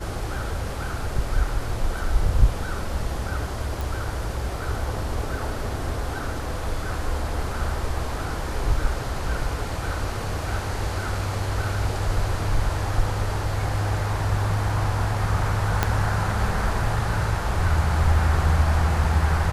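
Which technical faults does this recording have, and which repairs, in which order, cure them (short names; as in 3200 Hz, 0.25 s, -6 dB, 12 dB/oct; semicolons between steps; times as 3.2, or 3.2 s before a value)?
3.81 pop
15.83 pop -5 dBFS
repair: de-click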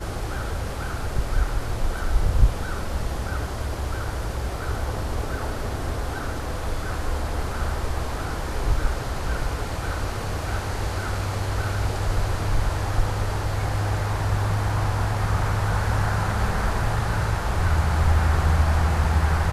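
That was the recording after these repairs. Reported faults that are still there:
15.83 pop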